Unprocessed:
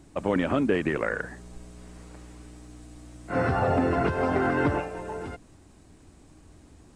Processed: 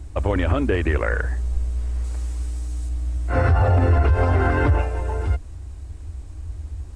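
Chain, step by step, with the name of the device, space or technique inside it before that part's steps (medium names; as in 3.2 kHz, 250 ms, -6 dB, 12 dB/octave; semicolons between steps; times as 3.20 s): 2.04–2.89 s: tone controls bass -2 dB, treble +7 dB; car stereo with a boomy subwoofer (resonant low shelf 110 Hz +14 dB, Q 3; peak limiter -14 dBFS, peak gain reduction 8.5 dB); trim +4.5 dB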